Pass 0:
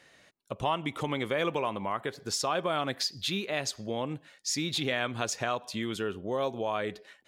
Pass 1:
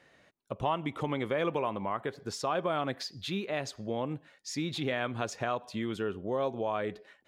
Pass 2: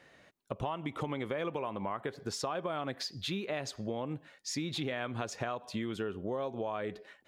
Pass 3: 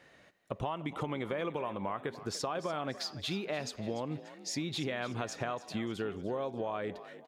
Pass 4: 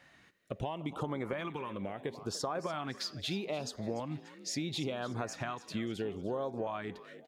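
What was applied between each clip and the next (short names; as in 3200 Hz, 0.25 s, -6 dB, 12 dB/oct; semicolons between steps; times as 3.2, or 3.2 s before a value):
high shelf 2800 Hz -11 dB
compressor, threshold -34 dBFS, peak gain reduction 9.5 dB; gain +2 dB
frequency-shifting echo 0.292 s, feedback 43%, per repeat +45 Hz, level -15 dB
LFO notch saw up 0.75 Hz 390–3700 Hz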